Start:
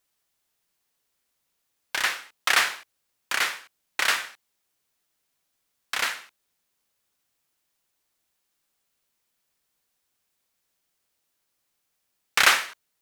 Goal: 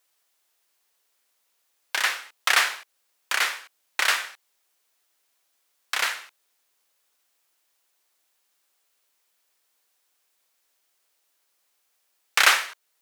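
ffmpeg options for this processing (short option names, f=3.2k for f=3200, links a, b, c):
-filter_complex "[0:a]highpass=410,asplit=2[a][b];[b]acompressor=threshold=-37dB:ratio=6,volume=-2dB[c];[a][c]amix=inputs=2:normalize=0"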